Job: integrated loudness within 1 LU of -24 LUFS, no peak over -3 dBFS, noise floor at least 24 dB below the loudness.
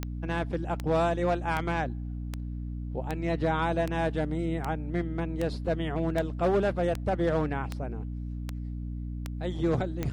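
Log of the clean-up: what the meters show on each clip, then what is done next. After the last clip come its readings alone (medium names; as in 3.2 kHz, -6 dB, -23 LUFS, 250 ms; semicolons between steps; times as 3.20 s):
clicks found 14; hum 60 Hz; highest harmonic 300 Hz; hum level -32 dBFS; loudness -30.5 LUFS; peak level -14.5 dBFS; loudness target -24.0 LUFS
-> de-click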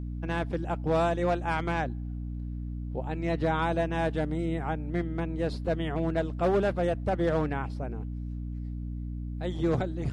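clicks found 0; hum 60 Hz; highest harmonic 300 Hz; hum level -32 dBFS
-> de-hum 60 Hz, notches 5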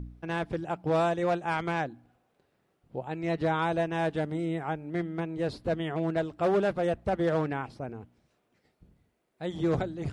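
hum not found; loudness -30.5 LUFS; peak level -17.5 dBFS; loudness target -24.0 LUFS
-> trim +6.5 dB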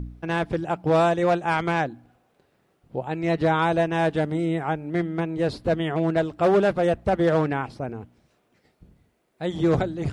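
loudness -24.0 LUFS; peak level -11.0 dBFS; noise floor -68 dBFS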